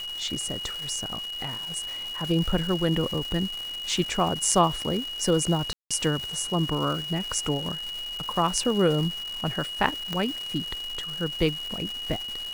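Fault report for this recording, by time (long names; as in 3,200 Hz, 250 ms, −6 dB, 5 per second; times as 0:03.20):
surface crackle 590 per second −32 dBFS
whistle 2,900 Hz −32 dBFS
0:05.73–0:05.91: drop-out 176 ms
0:10.13: click −15 dBFS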